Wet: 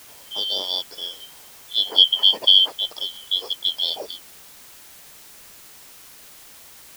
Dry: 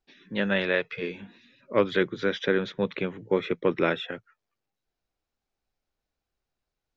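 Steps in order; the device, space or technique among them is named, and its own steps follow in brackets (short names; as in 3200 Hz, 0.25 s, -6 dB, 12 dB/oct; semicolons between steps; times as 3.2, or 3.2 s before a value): 1.98–2.66 resonant low shelf 430 Hz +12.5 dB, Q 1.5; split-band scrambled radio (four-band scrambler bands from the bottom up 3412; BPF 310–2900 Hz; white noise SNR 21 dB); gain +5 dB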